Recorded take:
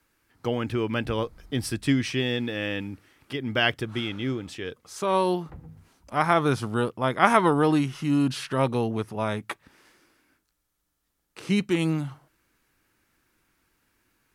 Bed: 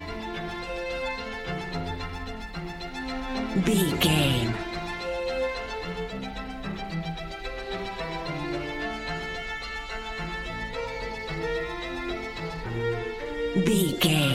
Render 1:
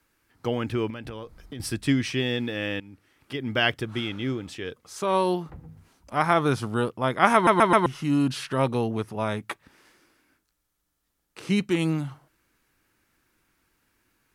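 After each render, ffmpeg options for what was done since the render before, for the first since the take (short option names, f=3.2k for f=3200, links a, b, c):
-filter_complex "[0:a]asettb=1/sr,asplit=3[a][b][c];[a]atrim=end=0.904[d];[b]atrim=start=0.9:end=1.6,asetpts=PTS-STARTPTS,afade=t=in:d=0.004:c=qsin,afade=t=out:st=0.696:d=0.004:c=qsin,acompressor=threshold=-33dB:ratio=10:attack=3.2:release=140:knee=1:detection=peak[e];[c]atrim=start=1.596[f];[d][e]acrossfade=d=0.004:c1=hsin:c2=qsin[g];[g][f]acrossfade=d=0.004:c1=qsin:c2=hsin,asplit=6[h][i][j][k][l][m];[h]atrim=end=2.8,asetpts=PTS-STARTPTS,afade=t=out:st=2.796:d=0.004:c=hsin:silence=0.16788[n];[i]atrim=start=2.8:end=7.472,asetpts=PTS-STARTPTS,afade=t=in:d=0.61:silence=0.16788[o];[j]atrim=start=7.338:end=7.472[p];[k]atrim=start=7.338:end=7.472[q];[l]atrim=start=7.338:end=7.472[r];[m]atrim=start=7.858[s];[n][o]concat=n=2:v=0:a=1[t];[t][p]acrossfade=d=0.004:c1=hsin:c2=hsin[u];[u][q]acrossfade=d=0.004:c1=hsin:c2=hsin[v];[v][r]acrossfade=d=0.004:c1=hsin:c2=hsin[w];[w][s]acrossfade=d=0.004:c1=hsin:c2=hsin"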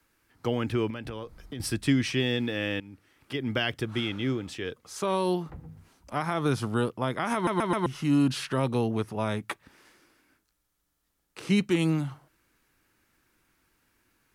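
-filter_complex "[0:a]alimiter=limit=-13dB:level=0:latency=1:release=97,acrossover=split=370|3000[a][b][c];[b]acompressor=threshold=-30dB:ratio=2[d];[a][d][c]amix=inputs=3:normalize=0"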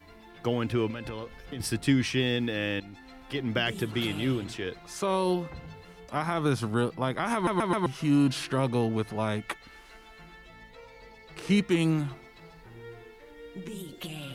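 -filter_complex "[1:a]volume=-17dB[a];[0:a][a]amix=inputs=2:normalize=0"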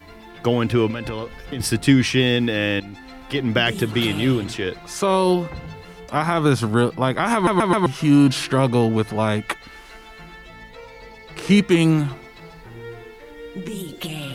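-af "volume=9dB"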